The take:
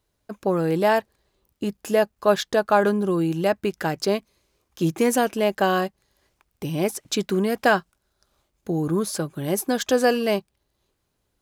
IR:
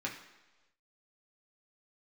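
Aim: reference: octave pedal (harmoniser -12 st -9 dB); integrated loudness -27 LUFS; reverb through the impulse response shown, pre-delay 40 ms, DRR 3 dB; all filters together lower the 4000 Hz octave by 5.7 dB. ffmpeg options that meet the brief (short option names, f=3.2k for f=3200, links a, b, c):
-filter_complex "[0:a]equalizer=f=4k:t=o:g=-8,asplit=2[a][b];[1:a]atrim=start_sample=2205,adelay=40[c];[b][c]afir=irnorm=-1:irlink=0,volume=-6dB[d];[a][d]amix=inputs=2:normalize=0,asplit=2[e][f];[f]asetrate=22050,aresample=44100,atempo=2,volume=-9dB[g];[e][g]amix=inputs=2:normalize=0,volume=-5.5dB"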